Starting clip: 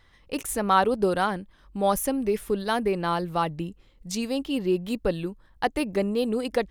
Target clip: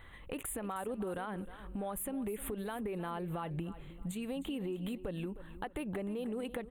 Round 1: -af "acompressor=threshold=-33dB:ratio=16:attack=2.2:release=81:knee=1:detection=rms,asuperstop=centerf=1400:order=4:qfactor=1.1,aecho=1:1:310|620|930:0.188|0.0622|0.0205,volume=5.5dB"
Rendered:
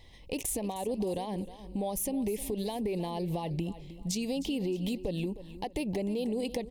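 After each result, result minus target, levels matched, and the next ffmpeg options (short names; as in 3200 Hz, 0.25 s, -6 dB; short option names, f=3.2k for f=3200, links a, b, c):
compressor: peak gain reduction -6 dB; 4000 Hz band +4.0 dB
-af "acompressor=threshold=-39.5dB:ratio=16:attack=2.2:release=81:knee=1:detection=rms,asuperstop=centerf=1400:order=4:qfactor=1.1,aecho=1:1:310|620|930:0.188|0.0622|0.0205,volume=5.5dB"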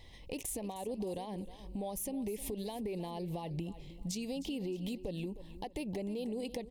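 4000 Hz band +4.0 dB
-af "acompressor=threshold=-39.5dB:ratio=16:attack=2.2:release=81:knee=1:detection=rms,asuperstop=centerf=5300:order=4:qfactor=1.1,aecho=1:1:310|620|930:0.188|0.0622|0.0205,volume=5.5dB"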